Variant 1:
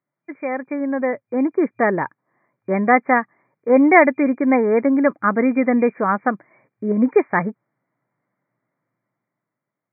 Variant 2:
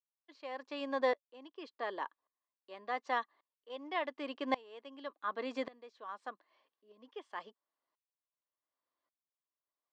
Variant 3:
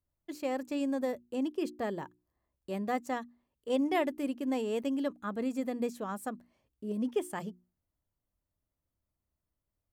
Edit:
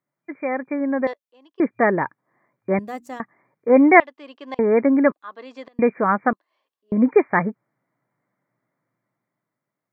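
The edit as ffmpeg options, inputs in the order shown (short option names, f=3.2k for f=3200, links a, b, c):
-filter_complex "[1:a]asplit=4[a][b][c][d];[0:a]asplit=6[e][f][g][h][i][j];[e]atrim=end=1.072[k];[a]atrim=start=1.068:end=1.602[l];[f]atrim=start=1.598:end=2.792[m];[2:a]atrim=start=2.788:end=3.202[n];[g]atrim=start=3.198:end=4.002[o];[b]atrim=start=3.998:end=4.592[p];[h]atrim=start=4.588:end=5.122[q];[c]atrim=start=5.118:end=5.792[r];[i]atrim=start=5.788:end=6.332[s];[d]atrim=start=6.328:end=6.922[t];[j]atrim=start=6.918[u];[k][l]acrossfade=d=0.004:c1=hsin:c2=hsin[v];[v][m]acrossfade=d=0.004:c1=hsin:c2=hsin[w];[w][n]acrossfade=d=0.004:c1=hsin:c2=hsin[x];[x][o]acrossfade=d=0.004:c1=hsin:c2=hsin[y];[y][p]acrossfade=d=0.004:c1=hsin:c2=hsin[z];[z][q]acrossfade=d=0.004:c1=hsin:c2=hsin[aa];[aa][r]acrossfade=d=0.004:c1=hsin:c2=hsin[ab];[ab][s]acrossfade=d=0.004:c1=hsin:c2=hsin[ac];[ac][t]acrossfade=d=0.004:c1=hsin:c2=hsin[ad];[ad][u]acrossfade=d=0.004:c1=hsin:c2=hsin"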